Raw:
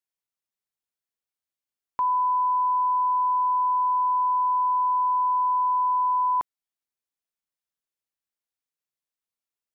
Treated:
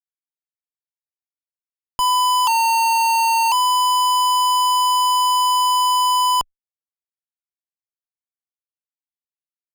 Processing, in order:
0:02.47–0:03.52: frequency shifter −89 Hz
fuzz pedal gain 56 dB, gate −52 dBFS
harmonic generator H 6 −13 dB, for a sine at −11 dBFS
level −3 dB

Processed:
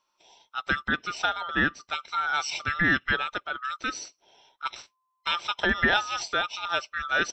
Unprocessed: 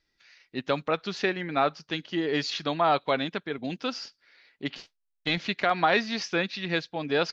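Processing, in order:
neighbouring bands swapped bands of 1,000 Hz

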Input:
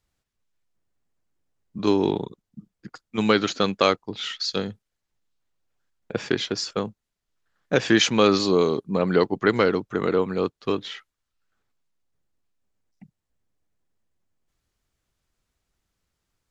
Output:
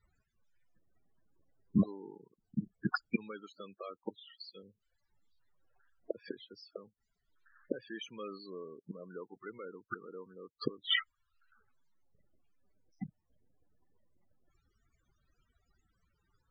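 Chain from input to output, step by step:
gate with flip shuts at −24 dBFS, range −35 dB
in parallel at −8 dB: log-companded quantiser 6 bits
on the sum: low-shelf EQ 400 Hz −7 dB
spectral peaks only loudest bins 16
level +10 dB

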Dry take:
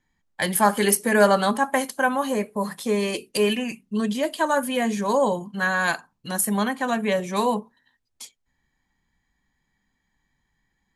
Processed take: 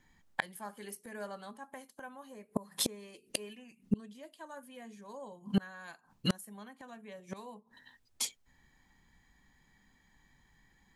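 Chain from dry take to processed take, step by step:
gate with flip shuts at −23 dBFS, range −32 dB
level +6 dB

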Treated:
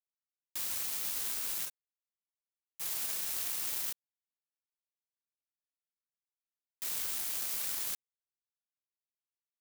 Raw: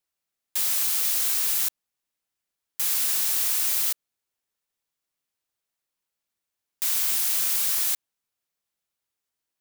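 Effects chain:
power curve on the samples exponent 2
0:01.65–0:02.81: string-ensemble chorus
level −4 dB

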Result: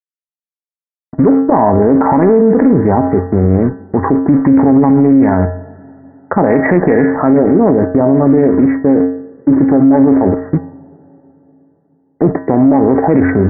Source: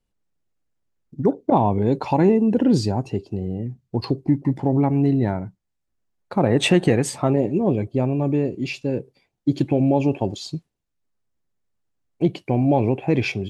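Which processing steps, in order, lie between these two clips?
high-pass filter 59 Hz 24 dB per octave
parametric band 110 Hz −14 dB 0.52 octaves
leveller curve on the samples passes 1
in parallel at −2 dB: compressor whose output falls as the input rises −23 dBFS, ratio −1
on the sum: dead-zone distortion −37 dBFS
linear-phase brick-wall low-pass 2,000 Hz
tuned comb filter 90 Hz, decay 0.57 s, harmonics odd, mix 80%
coupled-rooms reverb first 0.23 s, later 3.5 s, from −22 dB, DRR 17 dB
boost into a limiter +24.5 dB
highs frequency-modulated by the lows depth 0.16 ms
level −1 dB

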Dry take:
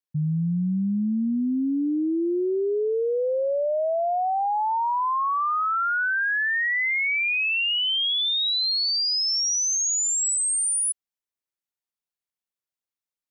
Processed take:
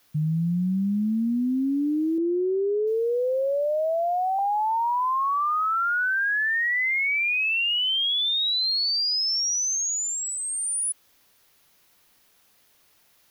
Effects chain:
background noise white −61 dBFS
parametric band 8,000 Hz −6.5 dB 0.41 octaves
0:02.18–0:04.39: multiband delay without the direct sound lows, highs 690 ms, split 1,500 Hz

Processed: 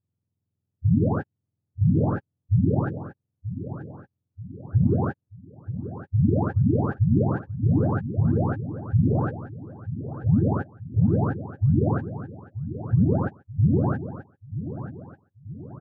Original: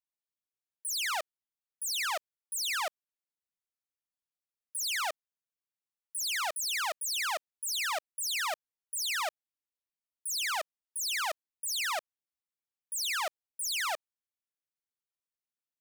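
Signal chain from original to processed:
frequency axis turned over on the octave scale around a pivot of 1,000 Hz
parametric band 2,100 Hz −12.5 dB 0.2 octaves
on a send: repeating echo 933 ms, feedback 46%, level −12 dB
on the sum: level +5 dB

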